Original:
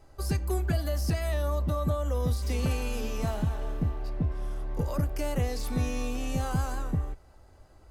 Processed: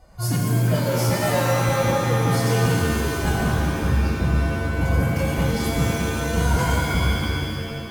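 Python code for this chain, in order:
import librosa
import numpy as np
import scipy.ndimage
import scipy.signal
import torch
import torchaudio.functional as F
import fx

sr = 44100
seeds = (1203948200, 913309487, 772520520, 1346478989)

y = fx.pitch_keep_formants(x, sr, semitones=10.5)
y = fx.cheby_harmonics(y, sr, harmonics=(5,), levels_db=(-15,), full_scale_db=-16.0)
y = fx.rev_shimmer(y, sr, seeds[0], rt60_s=2.1, semitones=7, shimmer_db=-2, drr_db=-0.5)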